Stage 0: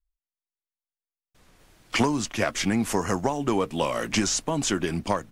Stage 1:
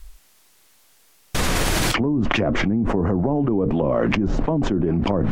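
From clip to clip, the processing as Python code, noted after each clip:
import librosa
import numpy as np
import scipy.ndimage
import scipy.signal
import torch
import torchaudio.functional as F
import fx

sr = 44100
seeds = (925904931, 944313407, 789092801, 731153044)

y = fx.env_lowpass_down(x, sr, base_hz=380.0, full_db=-21.0)
y = fx.env_flatten(y, sr, amount_pct=100)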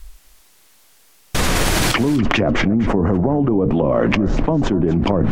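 y = np.clip(x, -10.0 ** (-4.5 / 20.0), 10.0 ** (-4.5 / 20.0))
y = y + 10.0 ** (-15.5 / 20.0) * np.pad(y, (int(247 * sr / 1000.0), 0))[:len(y)]
y = F.gain(torch.from_numpy(y), 3.5).numpy()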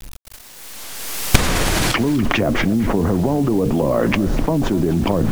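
y = fx.recorder_agc(x, sr, target_db=-10.5, rise_db_per_s=24.0, max_gain_db=30)
y = fx.quant_dither(y, sr, seeds[0], bits=6, dither='none')
y = F.gain(torch.from_numpy(y), -1.0).numpy()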